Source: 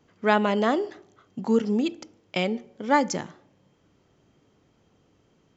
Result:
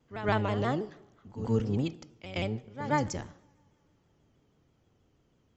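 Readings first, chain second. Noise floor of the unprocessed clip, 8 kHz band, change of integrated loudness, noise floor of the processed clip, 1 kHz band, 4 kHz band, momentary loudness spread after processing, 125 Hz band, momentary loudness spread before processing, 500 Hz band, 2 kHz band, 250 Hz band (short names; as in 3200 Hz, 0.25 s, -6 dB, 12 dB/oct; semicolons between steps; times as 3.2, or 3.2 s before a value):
-65 dBFS, n/a, -6.5 dB, -70 dBFS, -8.0 dB, -8.0 dB, 14 LU, +5.5 dB, 13 LU, -7.5 dB, -8.0 dB, -7.5 dB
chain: octaver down 1 oct, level +1 dB; on a send: reverse echo 0.125 s -11.5 dB; on the sum: two-slope reverb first 0.78 s, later 3.1 s, from -18 dB, DRR 20 dB; shaped vibrato saw down 6.2 Hz, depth 100 cents; gain -8 dB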